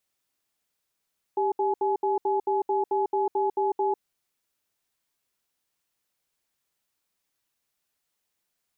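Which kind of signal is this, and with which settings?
cadence 394 Hz, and 846 Hz, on 0.15 s, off 0.07 s, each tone -24.5 dBFS 2.64 s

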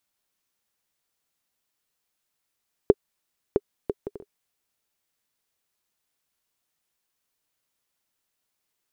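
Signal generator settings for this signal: bouncing ball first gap 0.66 s, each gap 0.51, 408 Hz, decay 40 ms -2.5 dBFS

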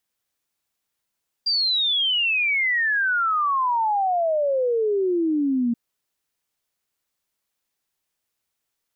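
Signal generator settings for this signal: log sweep 4800 Hz -> 230 Hz 4.28 s -18.5 dBFS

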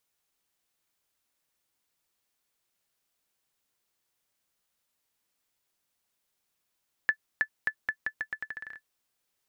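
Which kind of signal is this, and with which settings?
bouncing ball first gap 0.32 s, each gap 0.82, 1740 Hz, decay 75 ms -13 dBFS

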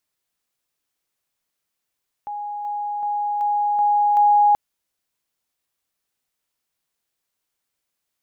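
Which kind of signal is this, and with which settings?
level ladder 827 Hz -26.5 dBFS, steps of 3 dB, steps 6, 0.38 s 0.00 s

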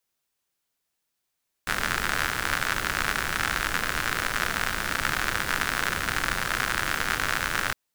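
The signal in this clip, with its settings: rain from filtered ticks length 6.06 s, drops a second 94, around 1500 Hz, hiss -5 dB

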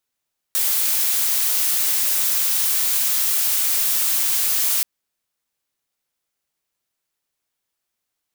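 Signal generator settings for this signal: noise blue, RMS -19.5 dBFS 4.28 s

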